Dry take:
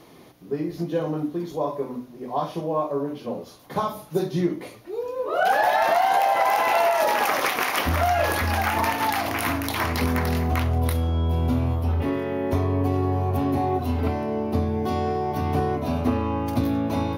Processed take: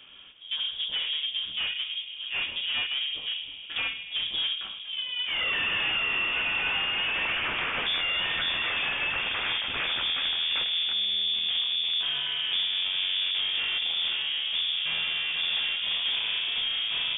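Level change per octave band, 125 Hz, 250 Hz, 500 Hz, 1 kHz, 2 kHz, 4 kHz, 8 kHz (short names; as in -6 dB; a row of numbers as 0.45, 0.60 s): -27.5 dB, -24.5 dB, -22.0 dB, -17.0 dB, +0.5 dB, +13.5 dB, under -40 dB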